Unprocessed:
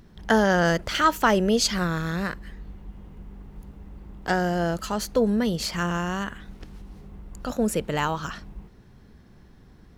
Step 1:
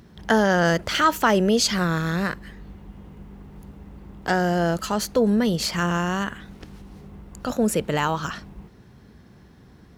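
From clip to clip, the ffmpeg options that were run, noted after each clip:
ffmpeg -i in.wav -filter_complex "[0:a]highpass=66,asplit=2[link_01][link_02];[link_02]alimiter=limit=-17.5dB:level=0:latency=1:release=31,volume=-2dB[link_03];[link_01][link_03]amix=inputs=2:normalize=0,volume=-1.5dB" out.wav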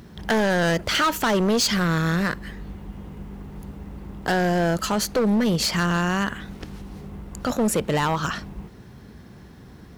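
ffmpeg -i in.wav -filter_complex "[0:a]asplit=2[link_01][link_02];[link_02]acompressor=threshold=-27dB:ratio=6,volume=-2dB[link_03];[link_01][link_03]amix=inputs=2:normalize=0,acrusher=bits=10:mix=0:aa=0.000001,volume=17dB,asoftclip=hard,volume=-17dB" out.wav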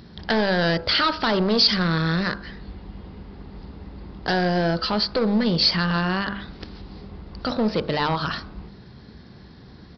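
ffmpeg -i in.wav -af "bandreject=frequency=49.64:width_type=h:width=4,bandreject=frequency=99.28:width_type=h:width=4,bandreject=frequency=148.92:width_type=h:width=4,bandreject=frequency=198.56:width_type=h:width=4,bandreject=frequency=248.2:width_type=h:width=4,bandreject=frequency=297.84:width_type=h:width=4,bandreject=frequency=347.48:width_type=h:width=4,bandreject=frequency=397.12:width_type=h:width=4,bandreject=frequency=446.76:width_type=h:width=4,bandreject=frequency=496.4:width_type=h:width=4,bandreject=frequency=546.04:width_type=h:width=4,bandreject=frequency=595.68:width_type=h:width=4,bandreject=frequency=645.32:width_type=h:width=4,bandreject=frequency=694.96:width_type=h:width=4,bandreject=frequency=744.6:width_type=h:width=4,bandreject=frequency=794.24:width_type=h:width=4,bandreject=frequency=843.88:width_type=h:width=4,bandreject=frequency=893.52:width_type=h:width=4,bandreject=frequency=943.16:width_type=h:width=4,bandreject=frequency=992.8:width_type=h:width=4,bandreject=frequency=1042.44:width_type=h:width=4,bandreject=frequency=1092.08:width_type=h:width=4,bandreject=frequency=1141.72:width_type=h:width=4,bandreject=frequency=1191.36:width_type=h:width=4,bandreject=frequency=1241:width_type=h:width=4,bandreject=frequency=1290.64:width_type=h:width=4,bandreject=frequency=1340.28:width_type=h:width=4,bandreject=frequency=1389.92:width_type=h:width=4,bandreject=frequency=1439.56:width_type=h:width=4,bandreject=frequency=1489.2:width_type=h:width=4,bandreject=frequency=1538.84:width_type=h:width=4,bandreject=frequency=1588.48:width_type=h:width=4,bandreject=frequency=1638.12:width_type=h:width=4,aexciter=amount=2.5:drive=6.2:freq=3900,aresample=11025,aresample=44100" out.wav

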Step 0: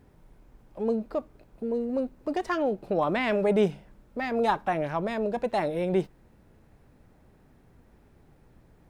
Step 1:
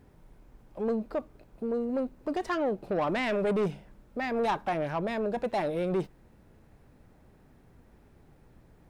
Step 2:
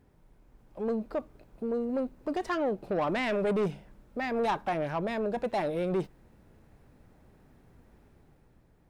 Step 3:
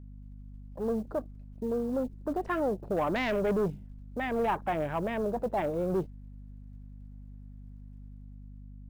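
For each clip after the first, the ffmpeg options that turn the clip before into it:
ffmpeg -i in.wav -af "asoftclip=type=tanh:threshold=-22.5dB" out.wav
ffmpeg -i in.wav -af "dynaudnorm=framelen=110:gausssize=13:maxgain=5dB,volume=-5.5dB" out.wav
ffmpeg -i in.wav -af "afwtdn=0.00794,acrusher=bits=8:mode=log:mix=0:aa=0.000001,aeval=exprs='val(0)+0.00562*(sin(2*PI*50*n/s)+sin(2*PI*2*50*n/s)/2+sin(2*PI*3*50*n/s)/3+sin(2*PI*4*50*n/s)/4+sin(2*PI*5*50*n/s)/5)':channel_layout=same" out.wav

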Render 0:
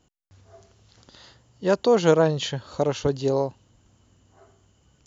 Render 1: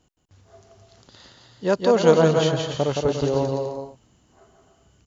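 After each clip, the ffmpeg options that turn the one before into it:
ffmpeg -i in.wav -af "aecho=1:1:170|289|372.3|430.6|471.4:0.631|0.398|0.251|0.158|0.1" out.wav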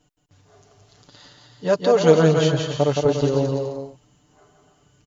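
ffmpeg -i in.wav -af "aecho=1:1:6.8:0.78,volume=-1dB" out.wav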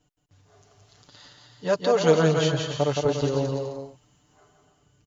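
ffmpeg -i in.wav -filter_complex "[0:a]equalizer=frequency=81:width=1.5:gain=4.5,acrossover=split=730[link_01][link_02];[link_02]dynaudnorm=framelen=100:gausssize=11:maxgain=4dB[link_03];[link_01][link_03]amix=inputs=2:normalize=0,volume=-5.5dB" out.wav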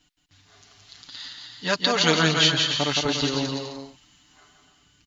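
ffmpeg -i in.wav -af "equalizer=frequency=125:width_type=o:width=1:gain=-9,equalizer=frequency=250:width_type=o:width=1:gain=4,equalizer=frequency=500:width_type=o:width=1:gain=-12,equalizer=frequency=2000:width_type=o:width=1:gain=6,equalizer=frequency=4000:width_type=o:width=1:gain=10,volume=3.5dB" out.wav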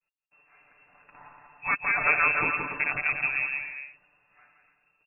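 ffmpeg -i in.wav -af "agate=range=-33dB:threshold=-55dB:ratio=3:detection=peak,lowpass=frequency=2400:width_type=q:width=0.5098,lowpass=frequency=2400:width_type=q:width=0.6013,lowpass=frequency=2400:width_type=q:width=0.9,lowpass=frequency=2400:width_type=q:width=2.563,afreqshift=-2800,volume=-2dB" out.wav

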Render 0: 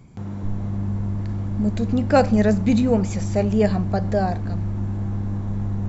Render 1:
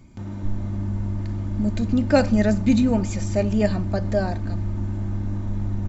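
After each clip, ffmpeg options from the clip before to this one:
ffmpeg -i in.wav -af "equalizer=frequency=670:width_type=o:width=2.3:gain=-3.5,aecho=1:1:3.3:0.53" out.wav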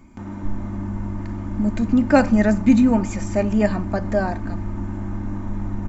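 ffmpeg -i in.wav -af "equalizer=frequency=125:width_type=o:width=1:gain=-9,equalizer=frequency=250:width_type=o:width=1:gain=5,equalizer=frequency=500:width_type=o:width=1:gain=-3,equalizer=frequency=1000:width_type=o:width=1:gain=6,equalizer=frequency=2000:width_type=o:width=1:gain=3,equalizer=frequency=4000:width_type=o:width=1:gain=-7,volume=1.5dB" out.wav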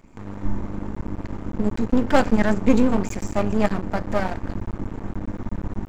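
ffmpeg -i in.wav -af "aeval=exprs='max(val(0),0)':channel_layout=same,volume=2dB" out.wav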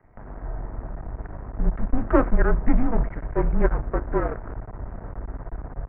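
ffmpeg -i in.wav -af "adynamicequalizer=threshold=0.0158:dfrequency=200:dqfactor=4.6:tfrequency=200:tqfactor=4.6:attack=5:release=100:ratio=0.375:range=3.5:mode=boostabove:tftype=bell,highpass=frequency=170:width_type=q:width=0.5412,highpass=frequency=170:width_type=q:width=1.307,lowpass=frequency=2100:width_type=q:width=0.5176,lowpass=frequency=2100:width_type=q:width=0.7071,lowpass=frequency=2100:width_type=q:width=1.932,afreqshift=-240" out.wav

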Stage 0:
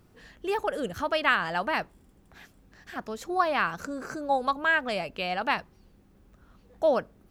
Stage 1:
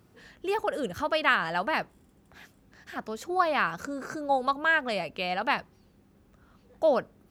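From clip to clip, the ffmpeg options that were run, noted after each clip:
ffmpeg -i in.wav -af "highpass=64" out.wav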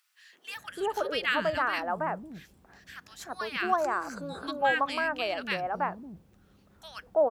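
ffmpeg -i in.wav -filter_complex "[0:a]acrossover=split=290|1500[link_01][link_02][link_03];[link_02]adelay=330[link_04];[link_01]adelay=560[link_05];[link_05][link_04][link_03]amix=inputs=3:normalize=0" out.wav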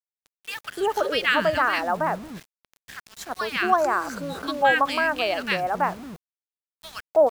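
ffmpeg -i in.wav -af "aeval=exprs='val(0)*gte(abs(val(0)),0.00562)':channel_layout=same,volume=6.5dB" out.wav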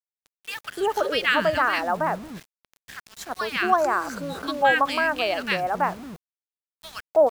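ffmpeg -i in.wav -af anull out.wav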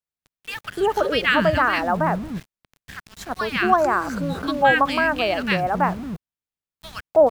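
ffmpeg -i in.wav -af "bass=frequency=250:gain=10,treble=frequency=4000:gain=-4,volume=2.5dB" out.wav

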